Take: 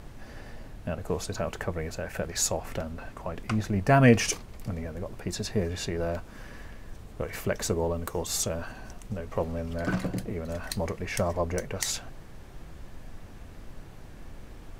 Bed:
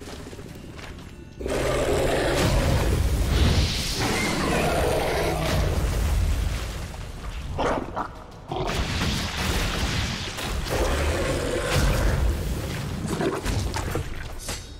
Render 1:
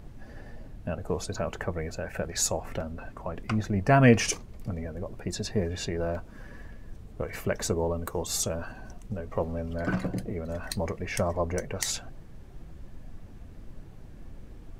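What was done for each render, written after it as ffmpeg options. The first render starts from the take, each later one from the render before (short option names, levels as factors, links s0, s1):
-af "afftdn=nr=8:nf=-46"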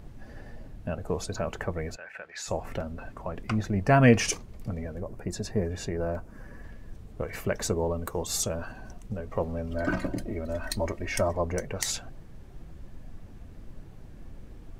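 -filter_complex "[0:a]asplit=3[s0][s1][s2];[s0]afade=t=out:st=1.95:d=0.02[s3];[s1]bandpass=f=2000:t=q:w=1.3,afade=t=in:st=1.95:d=0.02,afade=t=out:st=2.47:d=0.02[s4];[s2]afade=t=in:st=2.47:d=0.02[s5];[s3][s4][s5]amix=inputs=3:normalize=0,asettb=1/sr,asplit=3[s6][s7][s8];[s6]atrim=end=5.004[s9];[s7]atrim=start=5:end=6.64,asetpts=PTS-STARTPTS,afade=t=in:d=0.004:c=qsin,afade=t=out:st=1.636:d=0.004:c=qsin,equalizer=f=3500:t=o:w=1.3:g=-7.5[s10];[s8]atrim=start=6.636[s11];[s9][s10]acrossfade=d=0.004:c1=hsin:c2=qsin[s12];[s12][s11]acrossfade=d=0.004:c1=qsin:c2=hsin,asettb=1/sr,asplit=3[s13][s14][s15];[s13]atrim=end=9.714[s16];[s14]atrim=start=9.71:end=11.29,asetpts=PTS-STARTPTS,afade=t=in:d=0.004:c=qsin,afade=t=out:st=1.576:d=0.004:c=qsin,aecho=1:1:3.2:0.63,atrim=end_sample=69678[s17];[s15]atrim=start=11.286[s18];[s16][s17]acrossfade=d=0.004:c1=hsin:c2=qsin[s19];[s19][s18]acrossfade=d=0.004:c1=qsin:c2=hsin"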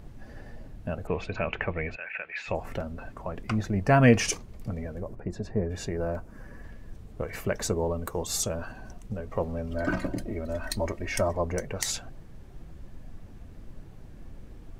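-filter_complex "[0:a]asettb=1/sr,asplit=3[s0][s1][s2];[s0]atrim=end=1.074[s3];[s1]atrim=start=1.07:end=2.55,asetpts=PTS-STARTPTS,afade=t=in:d=0.004:c=qsin,afade=t=out:st=1.476:d=0.004:c=qsin,lowpass=f=2500:t=q:w=5.7[s4];[s2]atrim=start=2.546[s5];[s3][s4]acrossfade=d=0.004:c1=hsin:c2=qsin[s6];[s6][s5]acrossfade=d=0.004:c1=qsin:c2=hsin,asplit=3[s7][s8][s9];[s7]afade=t=out:st=5.14:d=0.02[s10];[s8]lowpass=f=1300:p=1,afade=t=in:st=5.14:d=0.02,afade=t=out:st=5.69:d=0.02[s11];[s9]afade=t=in:st=5.69:d=0.02[s12];[s10][s11][s12]amix=inputs=3:normalize=0"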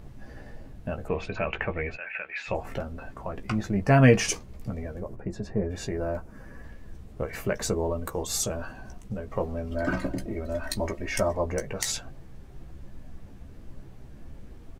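-filter_complex "[0:a]asplit=2[s0][s1];[s1]adelay=15,volume=0.447[s2];[s0][s2]amix=inputs=2:normalize=0"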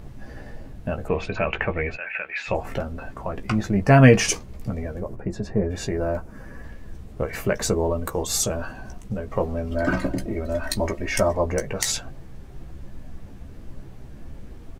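-af "volume=1.78,alimiter=limit=0.891:level=0:latency=1"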